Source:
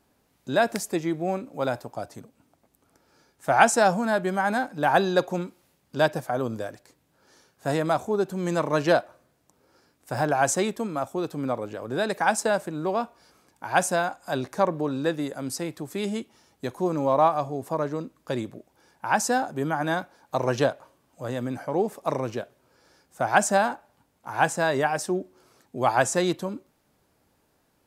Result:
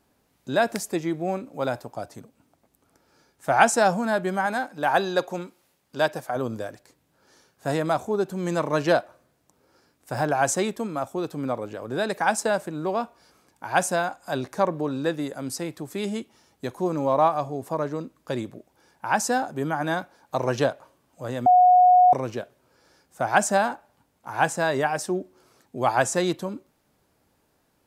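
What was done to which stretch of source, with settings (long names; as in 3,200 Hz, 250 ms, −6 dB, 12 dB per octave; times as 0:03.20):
0:04.46–0:06.36: low-shelf EQ 250 Hz −8.5 dB
0:21.46–0:22.13: beep over 727 Hz −11.5 dBFS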